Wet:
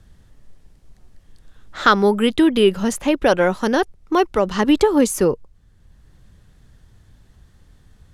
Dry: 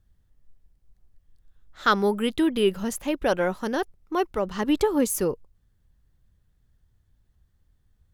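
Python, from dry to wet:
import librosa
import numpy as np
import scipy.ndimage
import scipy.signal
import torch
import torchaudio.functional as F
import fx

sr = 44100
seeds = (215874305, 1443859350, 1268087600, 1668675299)

y = scipy.signal.sosfilt(scipy.signal.butter(2, 9900.0, 'lowpass', fs=sr, output='sos'), x)
y = fx.band_squash(y, sr, depth_pct=40)
y = y * 10.0 ** (7.5 / 20.0)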